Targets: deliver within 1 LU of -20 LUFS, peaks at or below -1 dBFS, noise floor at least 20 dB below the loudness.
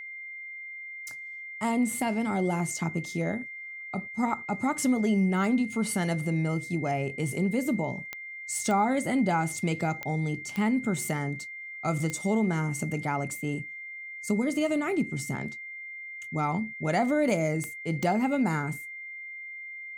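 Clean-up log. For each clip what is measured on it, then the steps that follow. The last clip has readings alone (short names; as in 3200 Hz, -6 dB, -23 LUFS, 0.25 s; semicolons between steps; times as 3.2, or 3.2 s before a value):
clicks 7; steady tone 2100 Hz; tone level -38 dBFS; loudness -29.5 LUFS; peak -13.5 dBFS; loudness target -20.0 LUFS
-> de-click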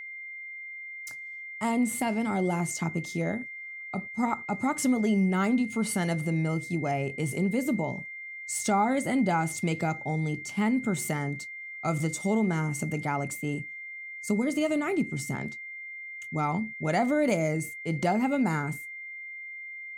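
clicks 0; steady tone 2100 Hz; tone level -38 dBFS
-> notch 2100 Hz, Q 30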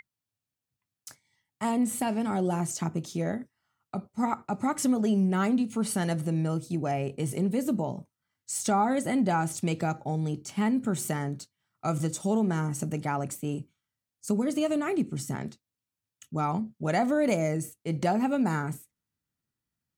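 steady tone none; loudness -29.0 LUFS; peak -13.5 dBFS; loudness target -20.0 LUFS
-> gain +9 dB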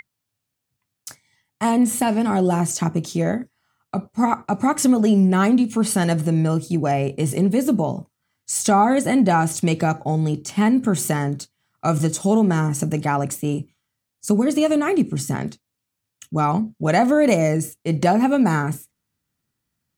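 loudness -20.0 LUFS; peak -4.5 dBFS; noise floor -80 dBFS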